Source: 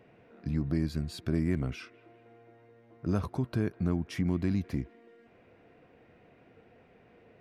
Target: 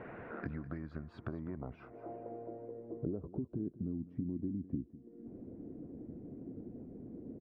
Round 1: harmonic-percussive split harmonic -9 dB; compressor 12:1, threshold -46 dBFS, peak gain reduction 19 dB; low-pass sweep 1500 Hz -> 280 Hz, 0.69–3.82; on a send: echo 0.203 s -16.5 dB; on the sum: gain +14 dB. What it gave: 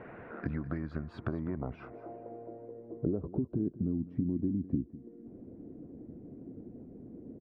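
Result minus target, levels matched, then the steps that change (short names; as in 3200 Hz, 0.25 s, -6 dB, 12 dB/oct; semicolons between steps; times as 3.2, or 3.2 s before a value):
compressor: peak gain reduction -6.5 dB
change: compressor 12:1, threshold -53 dBFS, peak gain reduction 25.5 dB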